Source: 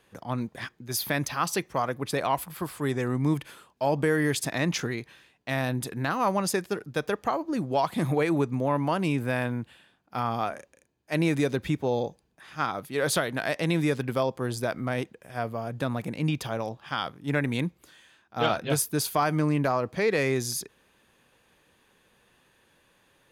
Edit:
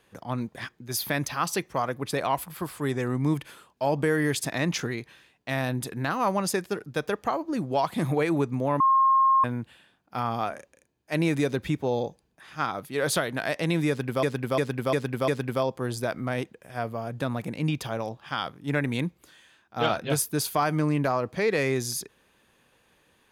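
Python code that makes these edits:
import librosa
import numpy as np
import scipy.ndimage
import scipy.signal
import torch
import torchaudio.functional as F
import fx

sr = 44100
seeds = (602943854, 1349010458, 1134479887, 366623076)

y = fx.edit(x, sr, fx.bleep(start_s=8.8, length_s=0.64, hz=1070.0, db=-16.5),
    fx.repeat(start_s=13.88, length_s=0.35, count=5), tone=tone)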